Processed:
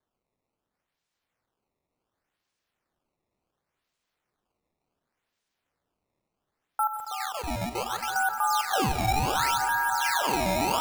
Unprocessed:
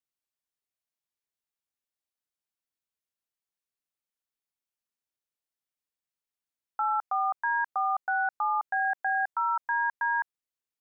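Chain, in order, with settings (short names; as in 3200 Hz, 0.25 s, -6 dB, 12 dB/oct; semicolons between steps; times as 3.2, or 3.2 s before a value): 6.87–8.16 band shelf 1000 Hz -14 dB; swelling echo 0.137 s, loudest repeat 8, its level -11.5 dB; limiter -24.5 dBFS, peak gain reduction 7.5 dB; decimation with a swept rate 16×, swing 160% 0.69 Hz; lo-fi delay 0.174 s, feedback 55%, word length 10-bit, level -12 dB; gain +6.5 dB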